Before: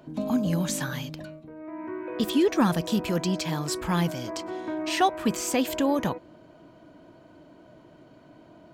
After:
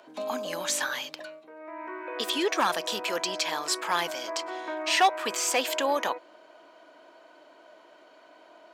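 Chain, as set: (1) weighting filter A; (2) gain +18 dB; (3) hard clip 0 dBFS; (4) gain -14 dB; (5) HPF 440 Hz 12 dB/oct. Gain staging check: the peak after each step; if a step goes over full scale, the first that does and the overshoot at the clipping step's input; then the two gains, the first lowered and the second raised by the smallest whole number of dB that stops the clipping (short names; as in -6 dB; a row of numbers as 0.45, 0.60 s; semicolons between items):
-10.5, +7.5, 0.0, -14.0, -9.5 dBFS; step 2, 7.5 dB; step 2 +10 dB, step 4 -6 dB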